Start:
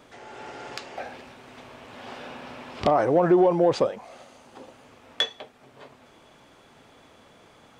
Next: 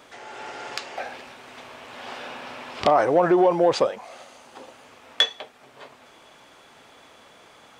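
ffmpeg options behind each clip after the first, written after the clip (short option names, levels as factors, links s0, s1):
-af "lowshelf=f=380:g=-11,volume=1.88"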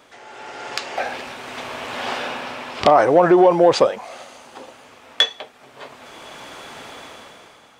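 -af "dynaudnorm=f=230:g=7:m=5.62,volume=0.891"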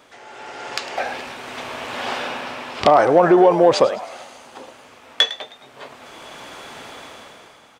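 -filter_complex "[0:a]asplit=5[s0][s1][s2][s3][s4];[s1]adelay=105,afreqshift=78,volume=0.158[s5];[s2]adelay=210,afreqshift=156,volume=0.0716[s6];[s3]adelay=315,afreqshift=234,volume=0.032[s7];[s4]adelay=420,afreqshift=312,volume=0.0145[s8];[s0][s5][s6][s7][s8]amix=inputs=5:normalize=0"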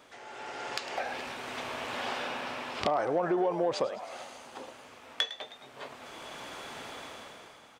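-af "acompressor=threshold=0.0398:ratio=2,volume=0.531"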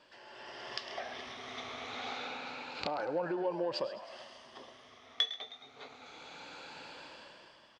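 -af "afftfilt=real='re*pow(10,9/40*sin(2*PI*(1.3*log(max(b,1)*sr/1024/100)/log(2)-(0.27)*(pts-256)/sr)))':imag='im*pow(10,9/40*sin(2*PI*(1.3*log(max(b,1)*sr/1024/100)/log(2)-(0.27)*(pts-256)/sr)))':win_size=1024:overlap=0.75,lowpass=f=4700:t=q:w=1.8,aecho=1:1:135:0.133,volume=0.398"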